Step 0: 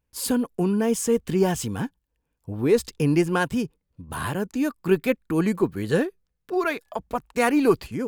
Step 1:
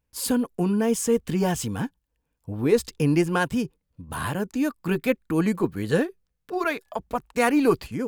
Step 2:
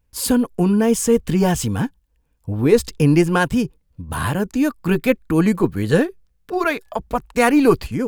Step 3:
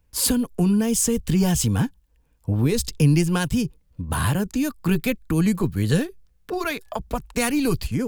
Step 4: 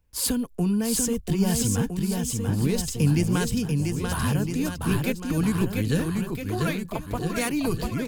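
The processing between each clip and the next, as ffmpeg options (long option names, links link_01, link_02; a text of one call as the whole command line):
ffmpeg -i in.wav -af "bandreject=frequency=380:width=12" out.wav
ffmpeg -i in.wav -af "lowshelf=frequency=69:gain=12,volume=5.5dB" out.wav
ffmpeg -i in.wav -filter_complex "[0:a]acrossover=split=180|3000[link_01][link_02][link_03];[link_02]acompressor=threshold=-29dB:ratio=4[link_04];[link_01][link_04][link_03]amix=inputs=3:normalize=0,volume=2.5dB" out.wav
ffmpeg -i in.wav -af "aecho=1:1:690|1311|1870|2373|2826:0.631|0.398|0.251|0.158|0.1,volume=-4.5dB" out.wav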